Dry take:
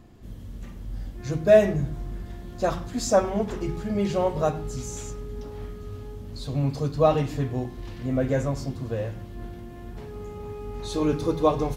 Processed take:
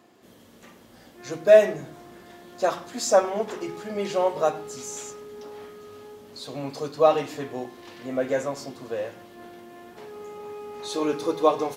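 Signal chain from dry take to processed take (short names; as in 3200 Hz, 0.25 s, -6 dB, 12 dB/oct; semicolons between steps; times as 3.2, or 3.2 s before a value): HPF 390 Hz 12 dB/oct; gain +2.5 dB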